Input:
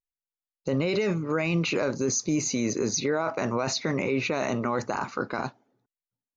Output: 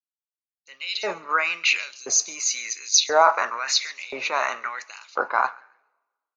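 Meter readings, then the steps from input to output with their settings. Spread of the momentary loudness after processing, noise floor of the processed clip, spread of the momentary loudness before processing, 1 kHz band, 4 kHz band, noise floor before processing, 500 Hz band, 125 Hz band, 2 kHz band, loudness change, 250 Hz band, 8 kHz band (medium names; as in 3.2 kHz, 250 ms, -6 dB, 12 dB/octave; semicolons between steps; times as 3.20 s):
14 LU, under -85 dBFS, 6 LU, +9.5 dB, +10.0 dB, under -85 dBFS, -1.0 dB, under -25 dB, +8.0 dB, +5.0 dB, -19.0 dB, no reading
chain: on a send: frequency-shifting echo 137 ms, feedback 40%, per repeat +34 Hz, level -20 dB; on the sum: LFO high-pass saw up 0.97 Hz 680–3800 Hz; two-slope reverb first 0.43 s, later 3.5 s, from -19 dB, DRR 18 dB; three bands expanded up and down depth 70%; trim +4.5 dB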